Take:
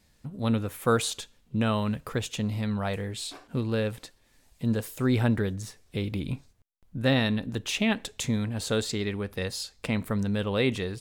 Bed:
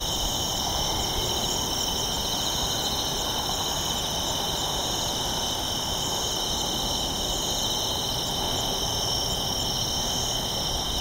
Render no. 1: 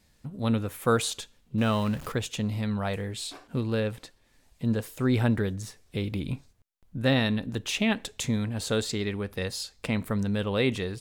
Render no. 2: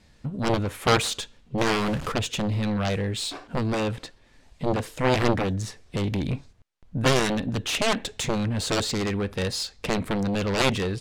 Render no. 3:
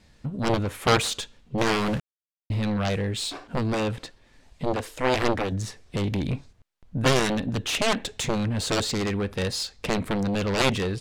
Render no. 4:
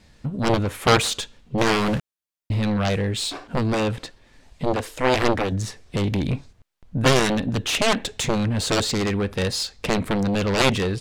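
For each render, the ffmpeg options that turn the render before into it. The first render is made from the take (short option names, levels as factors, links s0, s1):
-filter_complex "[0:a]asettb=1/sr,asplit=3[s0][s1][s2];[s0]atrim=end=1.584[s3];[s1]atrim=start=1.58:end=2.12,asetpts=PTS-STARTPTS,afade=t=in:d=0.004:c=qsin,afade=t=out:st=0.536:d=0.004:c=qsin,aeval=exprs='val(0)+0.5*0.0126*sgn(val(0))':c=same[s4];[s2]atrim=start=2.116[s5];[s3][s4]acrossfade=d=0.004:c1=hsin:c2=qsin[s6];[s6][s5]acrossfade=d=0.004:c1=qsin:c2=hsin,asettb=1/sr,asplit=3[s7][s8][s9];[s7]atrim=end=3.804[s10];[s8]atrim=start=3.8:end=5.14,asetpts=PTS-STARTPTS,afade=t=in:d=0.004:c=qsin,afade=t=out:st=1.336:d=0.004:c=qsin,highshelf=f=5600:g=-4.5[s11];[s9]atrim=start=5.136[s12];[s10][s11]acrossfade=d=0.004:c1=hsin:c2=qsin[s13];[s13][s12]acrossfade=d=0.004:c1=qsin:c2=hsin"
-af "aeval=exprs='0.266*(cos(1*acos(clip(val(0)/0.266,-1,1)))-cos(1*PI/2))+0.133*(cos(7*acos(clip(val(0)/0.266,-1,1)))-cos(7*PI/2))':c=same,adynamicsmooth=sensitivity=5:basefreq=6800"
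-filter_complex "[0:a]asettb=1/sr,asplit=3[s0][s1][s2];[s0]atrim=end=4.654[s3];[s1]atrim=start=4.65:end=5.52,asetpts=PTS-STARTPTS,afade=t=in:d=0.004:c=qsin,afade=t=out:st=0.866:d=0.004:c=qsin,equalizer=f=150:w=1.5:g=-11[s4];[s2]atrim=start=5.516[s5];[s3][s4]acrossfade=d=0.004:c1=hsin:c2=qsin[s6];[s6][s5]acrossfade=d=0.004:c1=qsin:c2=hsin,asplit=3[s7][s8][s9];[s7]atrim=end=2,asetpts=PTS-STARTPTS,afade=t=out:st=1.996:d=0.004:c=hsin[s10];[s8]atrim=start=2:end=2.5,asetpts=PTS-STARTPTS,volume=0[s11];[s9]atrim=start=2.5,asetpts=PTS-STARTPTS,afade=t=in:d=0.004:c=hsin[s12];[s10][s11][s12]concat=n=3:v=0:a=1"
-af "volume=1.5"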